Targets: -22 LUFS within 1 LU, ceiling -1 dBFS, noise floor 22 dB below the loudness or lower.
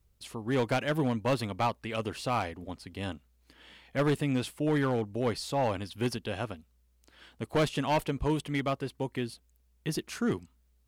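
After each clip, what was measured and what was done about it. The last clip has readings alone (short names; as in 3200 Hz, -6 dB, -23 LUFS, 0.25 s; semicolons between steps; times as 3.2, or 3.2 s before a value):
clipped 1.3%; flat tops at -21.5 dBFS; loudness -31.5 LUFS; peak -21.5 dBFS; loudness target -22.0 LUFS
-> clip repair -21.5 dBFS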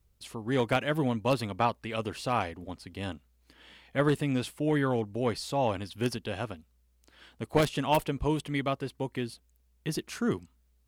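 clipped 0.0%; loudness -31.0 LUFS; peak -12.5 dBFS; loudness target -22.0 LUFS
-> gain +9 dB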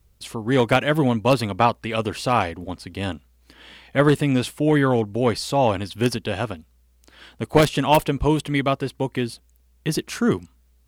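loudness -22.0 LUFS; peak -3.5 dBFS; noise floor -59 dBFS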